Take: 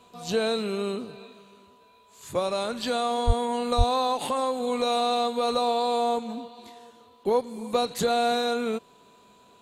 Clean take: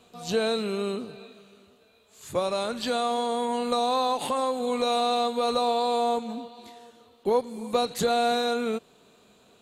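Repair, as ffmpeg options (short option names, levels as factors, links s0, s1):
-filter_complex "[0:a]bandreject=f=990:w=30,asplit=3[s0][s1][s2];[s0]afade=t=out:st=3.26:d=0.02[s3];[s1]highpass=f=140:w=0.5412,highpass=f=140:w=1.3066,afade=t=in:st=3.26:d=0.02,afade=t=out:st=3.38:d=0.02[s4];[s2]afade=t=in:st=3.38:d=0.02[s5];[s3][s4][s5]amix=inputs=3:normalize=0,asplit=3[s6][s7][s8];[s6]afade=t=out:st=3.77:d=0.02[s9];[s7]highpass=f=140:w=0.5412,highpass=f=140:w=1.3066,afade=t=in:st=3.77:d=0.02,afade=t=out:st=3.89:d=0.02[s10];[s8]afade=t=in:st=3.89:d=0.02[s11];[s9][s10][s11]amix=inputs=3:normalize=0"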